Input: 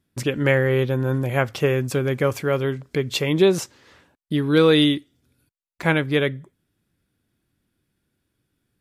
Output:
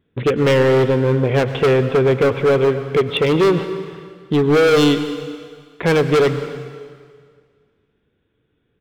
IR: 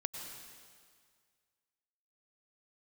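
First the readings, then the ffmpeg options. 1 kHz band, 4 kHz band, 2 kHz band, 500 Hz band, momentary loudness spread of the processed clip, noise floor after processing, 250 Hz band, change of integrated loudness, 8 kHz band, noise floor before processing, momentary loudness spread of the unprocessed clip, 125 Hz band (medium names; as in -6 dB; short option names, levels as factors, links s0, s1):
+7.5 dB, +1.5 dB, +2.0 dB, +6.5 dB, 15 LU, -68 dBFS, +3.5 dB, +4.5 dB, -0.5 dB, -77 dBFS, 10 LU, +3.5 dB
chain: -filter_complex "[0:a]equalizer=f=450:w=4.9:g=13,aresample=8000,aresample=44100,asoftclip=type=hard:threshold=0.15,asplit=2[s0][s1];[1:a]atrim=start_sample=2205[s2];[s1][s2]afir=irnorm=-1:irlink=0,volume=0.944[s3];[s0][s3]amix=inputs=2:normalize=0"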